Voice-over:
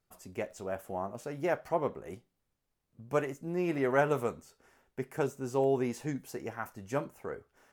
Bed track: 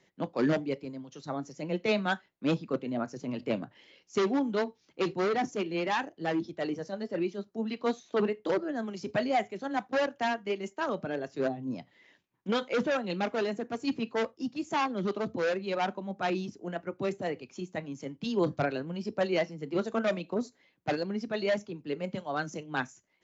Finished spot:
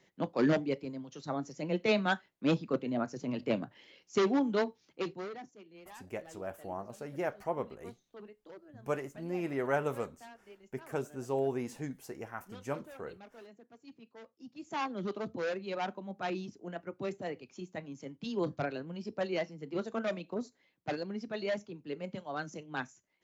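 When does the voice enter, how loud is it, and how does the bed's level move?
5.75 s, -4.0 dB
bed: 4.84 s -0.5 dB
5.58 s -22.5 dB
14.22 s -22.5 dB
14.82 s -5.5 dB

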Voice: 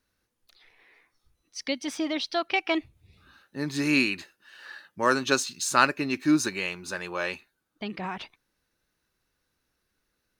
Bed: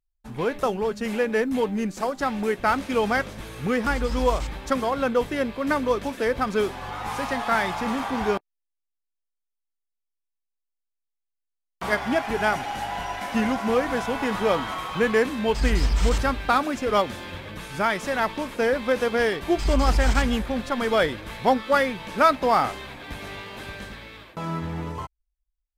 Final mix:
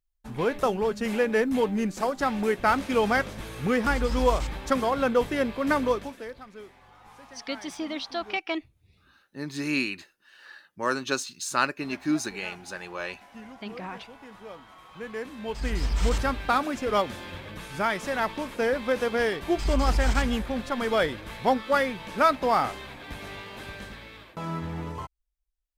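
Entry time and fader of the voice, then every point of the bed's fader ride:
5.80 s, -4.0 dB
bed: 5.87 s -0.5 dB
6.44 s -21 dB
14.68 s -21 dB
16.03 s -3 dB

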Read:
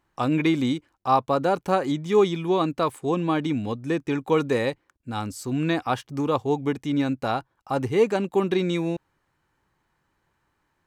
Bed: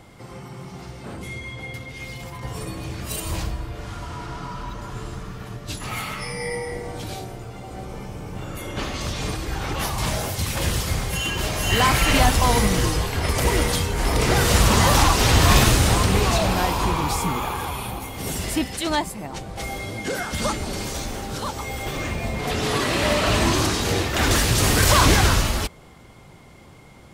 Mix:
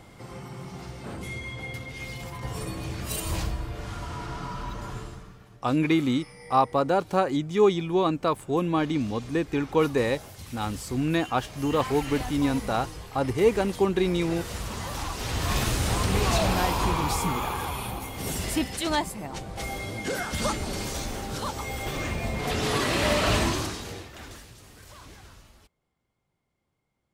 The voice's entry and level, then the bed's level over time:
5.45 s, -1.0 dB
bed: 4.91 s -2 dB
5.49 s -17.5 dB
14.90 s -17.5 dB
16.38 s -3 dB
23.35 s -3 dB
24.64 s -32 dB

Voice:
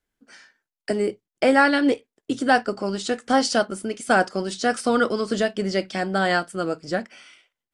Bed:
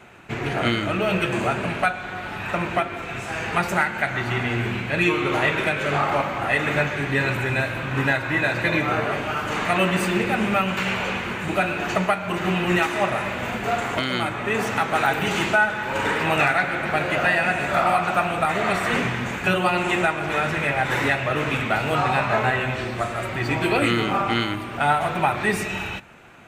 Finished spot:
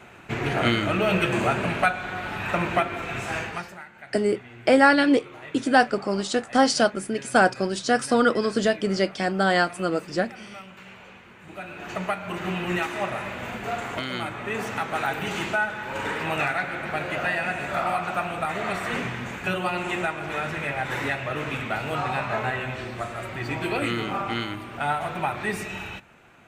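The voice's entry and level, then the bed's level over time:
3.25 s, +0.5 dB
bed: 3.37 s 0 dB
3.77 s -21 dB
11.33 s -21 dB
12.11 s -6 dB

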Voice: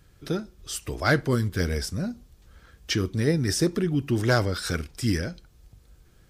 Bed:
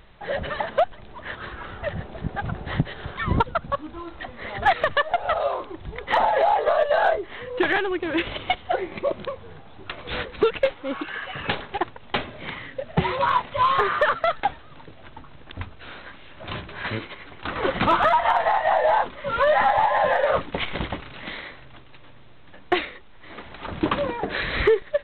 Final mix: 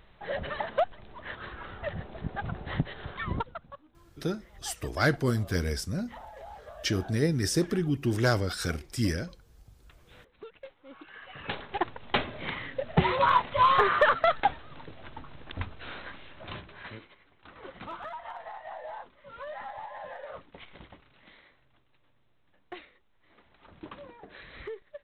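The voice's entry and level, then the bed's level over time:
3.95 s, -3.0 dB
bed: 3.18 s -6 dB
3.95 s -26.5 dB
10.57 s -26.5 dB
11.93 s -1.5 dB
16.15 s -1.5 dB
17.30 s -21.5 dB

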